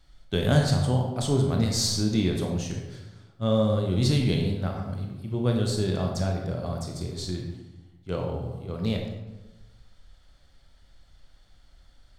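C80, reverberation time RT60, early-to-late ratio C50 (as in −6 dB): 6.0 dB, 1.1 s, 3.5 dB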